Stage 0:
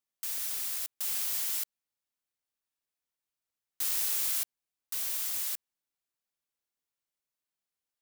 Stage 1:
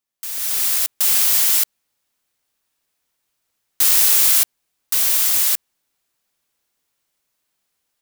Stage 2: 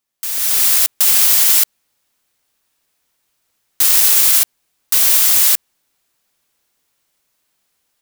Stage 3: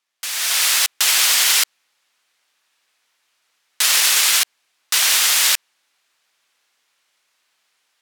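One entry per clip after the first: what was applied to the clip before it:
AGC gain up to 11.5 dB; gain +5 dB
limiter -7 dBFS, peak gain reduction 5.5 dB; gain +6 dB
band-pass 2200 Hz, Q 0.57; gain +6.5 dB

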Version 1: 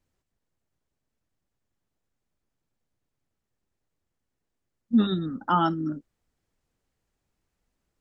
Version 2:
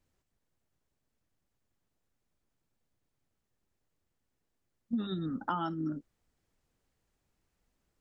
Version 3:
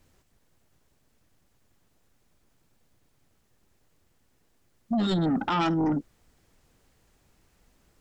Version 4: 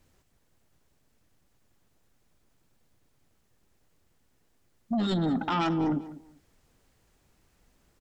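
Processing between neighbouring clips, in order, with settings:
compressor 12:1, threshold -30 dBFS, peak gain reduction 15 dB
limiter -27 dBFS, peak gain reduction 9 dB; sine folder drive 5 dB, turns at -27 dBFS; gain +5.5 dB
feedback echo 0.197 s, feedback 21%, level -16 dB; gain -2 dB

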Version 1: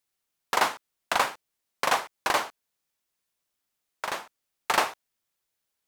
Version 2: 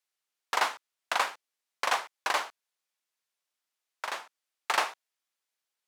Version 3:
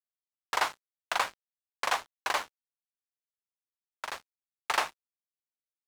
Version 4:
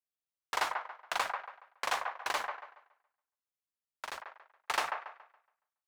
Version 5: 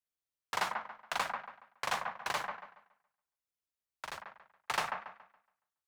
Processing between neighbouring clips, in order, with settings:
weighting filter A; gain -3.5 dB
crossover distortion -40 dBFS
band-limited delay 0.14 s, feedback 31%, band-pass 1000 Hz, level -4 dB; gain -4 dB
octaver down 2 oct, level -1 dB; gain -1.5 dB

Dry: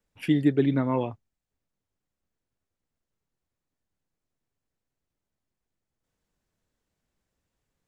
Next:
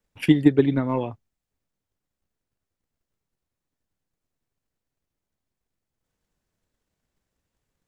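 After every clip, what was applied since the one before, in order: transient shaper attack +8 dB, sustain +2 dB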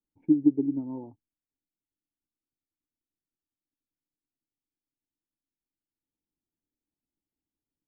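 vocal tract filter u; gain -3.5 dB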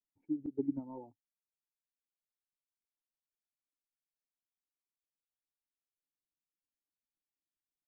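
reverb removal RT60 1.6 s; gate -54 dBFS, range -12 dB; auto swell 0.173 s; gain -1 dB

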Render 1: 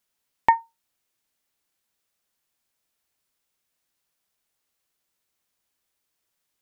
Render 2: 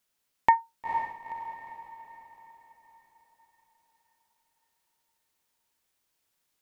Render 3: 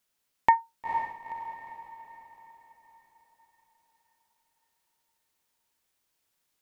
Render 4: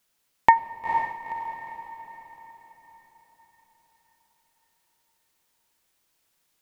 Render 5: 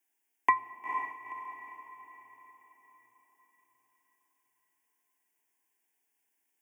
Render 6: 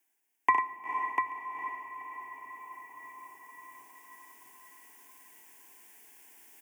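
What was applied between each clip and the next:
limiter -8 dBFS, peak gain reduction 3 dB; diffused feedback echo 0.479 s, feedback 47%, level -7 dB
nothing audible
reverb, pre-delay 6 ms, DRR 14.5 dB; gain +5.5 dB
frequency shift +120 Hz; fixed phaser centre 830 Hz, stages 8; gain -5.5 dB
reverse; upward compressor, threshold -40 dBFS; reverse; tapped delay 61/72/97/695 ms -8/-19.5/-8/-5 dB

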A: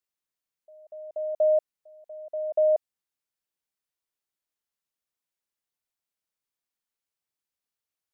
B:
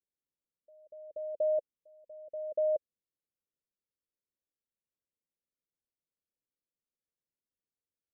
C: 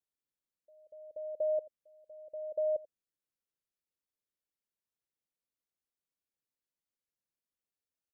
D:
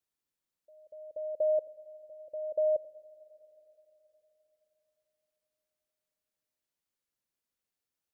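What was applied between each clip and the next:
elliptic low-pass 560 Hz
echo 86 ms -20 dB; gain -2.5 dB
Schroeder reverb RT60 4 s, combs from 32 ms, DRR 17.5 dB; gain +3.5 dB

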